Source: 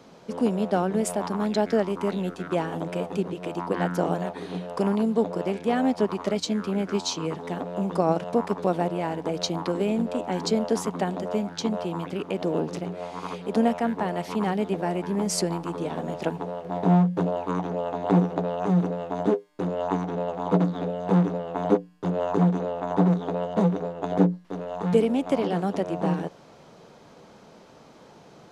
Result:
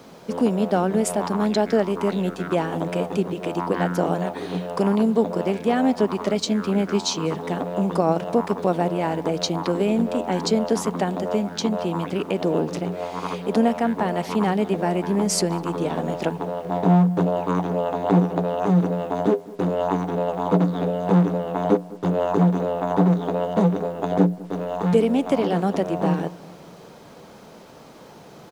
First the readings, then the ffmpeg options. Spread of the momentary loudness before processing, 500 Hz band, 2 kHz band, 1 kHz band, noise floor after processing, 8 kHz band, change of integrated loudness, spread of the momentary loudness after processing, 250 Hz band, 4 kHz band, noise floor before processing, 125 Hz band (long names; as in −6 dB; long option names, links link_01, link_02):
8 LU, +3.5 dB, +4.0 dB, +4.0 dB, −44 dBFS, +4.5 dB, +3.5 dB, 7 LU, +3.5 dB, +4.0 dB, −51 dBFS, +3.5 dB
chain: -filter_complex "[0:a]asplit=2[link_01][link_02];[link_02]alimiter=limit=-18.5dB:level=0:latency=1:release=319,volume=-1.5dB[link_03];[link_01][link_03]amix=inputs=2:normalize=0,asplit=2[link_04][link_05];[link_05]adelay=202,lowpass=frequency=1600:poles=1,volume=-19.5dB,asplit=2[link_06][link_07];[link_07]adelay=202,lowpass=frequency=1600:poles=1,volume=0.5,asplit=2[link_08][link_09];[link_09]adelay=202,lowpass=frequency=1600:poles=1,volume=0.5,asplit=2[link_10][link_11];[link_11]adelay=202,lowpass=frequency=1600:poles=1,volume=0.5[link_12];[link_04][link_06][link_08][link_10][link_12]amix=inputs=5:normalize=0,acrusher=bits=8:mix=0:aa=0.5"